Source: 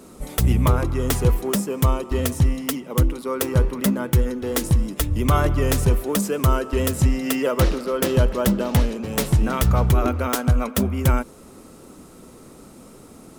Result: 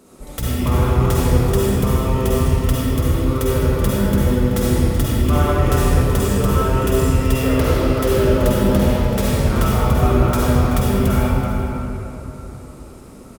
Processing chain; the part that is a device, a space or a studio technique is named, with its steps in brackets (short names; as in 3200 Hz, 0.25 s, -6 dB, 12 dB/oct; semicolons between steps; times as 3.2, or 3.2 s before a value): cave (echo 0.38 s -12.5 dB; reverb RT60 3.6 s, pre-delay 45 ms, DRR -8 dB); gain -5.5 dB